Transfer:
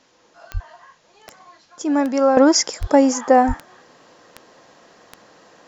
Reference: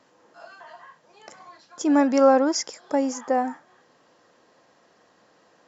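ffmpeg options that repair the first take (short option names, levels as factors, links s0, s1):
-filter_complex "[0:a]adeclick=t=4,asplit=3[s0][s1][s2];[s0]afade=t=out:st=0.53:d=0.02[s3];[s1]highpass=f=140:w=0.5412,highpass=f=140:w=1.3066,afade=t=in:st=0.53:d=0.02,afade=t=out:st=0.65:d=0.02[s4];[s2]afade=t=in:st=0.65:d=0.02[s5];[s3][s4][s5]amix=inputs=3:normalize=0,asplit=3[s6][s7][s8];[s6]afade=t=out:st=2.8:d=0.02[s9];[s7]highpass=f=140:w=0.5412,highpass=f=140:w=1.3066,afade=t=in:st=2.8:d=0.02,afade=t=out:st=2.92:d=0.02[s10];[s8]afade=t=in:st=2.92:d=0.02[s11];[s9][s10][s11]amix=inputs=3:normalize=0,asplit=3[s12][s13][s14];[s12]afade=t=out:st=3.47:d=0.02[s15];[s13]highpass=f=140:w=0.5412,highpass=f=140:w=1.3066,afade=t=in:st=3.47:d=0.02,afade=t=out:st=3.59:d=0.02[s16];[s14]afade=t=in:st=3.59:d=0.02[s17];[s15][s16][s17]amix=inputs=3:normalize=0,agate=range=0.0891:threshold=0.00447,asetnsamples=n=441:p=0,asendcmd='2.37 volume volume -9.5dB',volume=1"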